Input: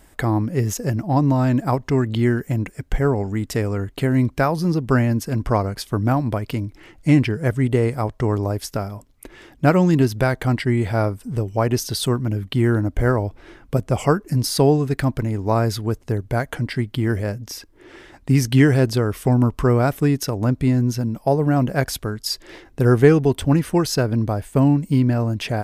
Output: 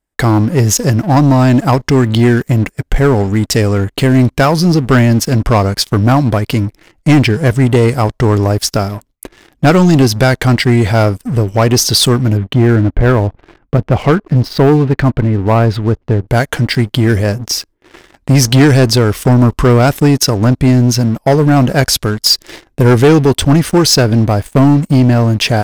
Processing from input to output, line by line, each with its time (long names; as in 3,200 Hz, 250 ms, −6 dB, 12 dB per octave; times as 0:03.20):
0:12.37–0:16.28: high-frequency loss of the air 340 metres
whole clip: noise gate with hold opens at −37 dBFS; dynamic equaliser 5,100 Hz, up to +7 dB, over −44 dBFS, Q 0.85; leveller curve on the samples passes 3